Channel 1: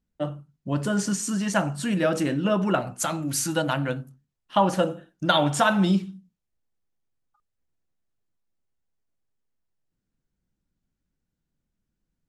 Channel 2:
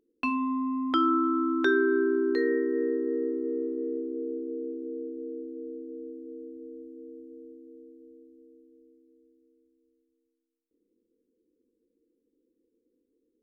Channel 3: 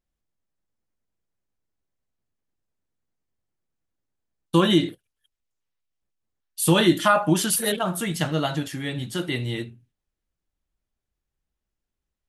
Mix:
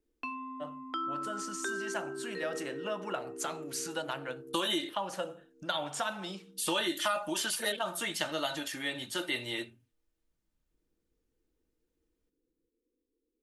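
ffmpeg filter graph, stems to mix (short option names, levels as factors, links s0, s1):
-filter_complex "[0:a]dynaudnorm=f=560:g=7:m=1.58,adelay=400,volume=0.299[s0];[1:a]asubboost=boost=5:cutoff=66,volume=0.398[s1];[2:a]aecho=1:1:3.3:0.4,volume=0.841,asplit=2[s2][s3];[s3]apad=whole_len=591846[s4];[s1][s4]sidechaincompress=threshold=0.0141:ratio=8:attack=16:release=1410[s5];[s0][s5][s2]amix=inputs=3:normalize=0,acrossover=split=420|3000|7600[s6][s7][s8][s9];[s6]acompressor=threshold=0.00282:ratio=4[s10];[s7]acompressor=threshold=0.0251:ratio=4[s11];[s8]acompressor=threshold=0.0158:ratio=4[s12];[s9]acompressor=threshold=0.00631:ratio=4[s13];[s10][s11][s12][s13]amix=inputs=4:normalize=0"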